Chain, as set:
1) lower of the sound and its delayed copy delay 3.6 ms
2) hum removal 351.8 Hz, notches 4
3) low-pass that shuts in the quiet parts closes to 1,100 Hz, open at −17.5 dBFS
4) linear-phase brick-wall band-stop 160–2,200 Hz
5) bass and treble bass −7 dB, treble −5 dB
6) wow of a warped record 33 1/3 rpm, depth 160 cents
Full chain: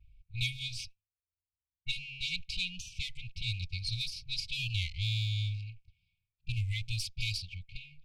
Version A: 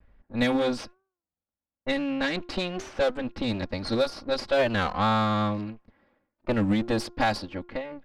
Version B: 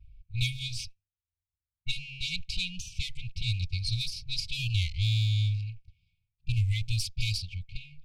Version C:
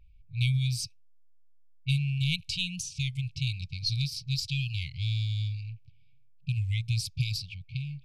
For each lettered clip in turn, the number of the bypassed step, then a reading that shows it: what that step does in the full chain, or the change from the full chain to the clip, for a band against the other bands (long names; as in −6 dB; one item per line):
4, 250 Hz band +27.0 dB
5, change in crest factor −1.5 dB
1, 250 Hz band +11.0 dB